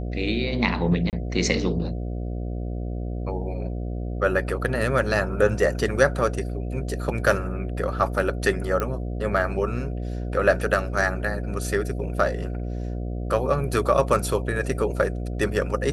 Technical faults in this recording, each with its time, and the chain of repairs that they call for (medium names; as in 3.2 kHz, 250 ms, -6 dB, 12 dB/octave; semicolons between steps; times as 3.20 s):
buzz 60 Hz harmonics 12 -29 dBFS
1.10–1.13 s: dropout 28 ms
8.80 s: pop -13 dBFS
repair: de-click; de-hum 60 Hz, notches 12; interpolate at 1.10 s, 28 ms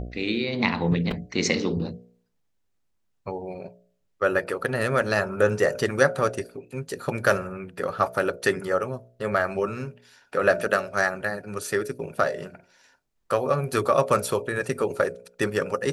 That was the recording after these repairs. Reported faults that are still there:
nothing left